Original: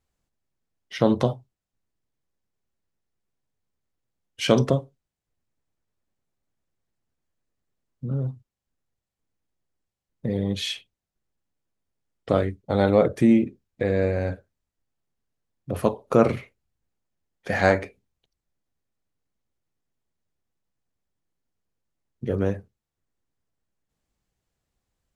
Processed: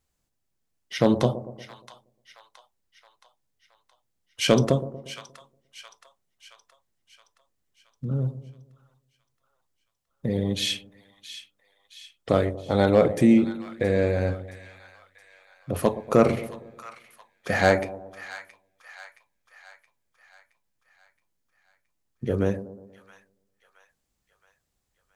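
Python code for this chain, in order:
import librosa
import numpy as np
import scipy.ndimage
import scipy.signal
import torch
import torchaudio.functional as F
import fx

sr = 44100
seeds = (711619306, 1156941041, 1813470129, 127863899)

p1 = fx.high_shelf(x, sr, hz=4300.0, db=6.5)
p2 = np.clip(p1, -10.0 ** (-7.5 / 20.0), 10.0 ** (-7.5 / 20.0))
y = p2 + fx.echo_split(p2, sr, split_hz=940.0, low_ms=118, high_ms=671, feedback_pct=52, wet_db=-13.5, dry=0)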